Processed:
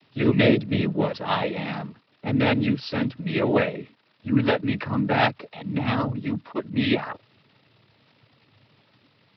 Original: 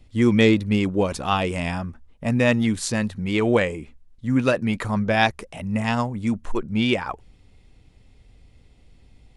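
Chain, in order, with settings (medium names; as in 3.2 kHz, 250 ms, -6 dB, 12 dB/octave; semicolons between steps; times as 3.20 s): crackle 490 per s -42 dBFS; noise-vocoded speech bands 12; resampled via 11.025 kHz; trim -1.5 dB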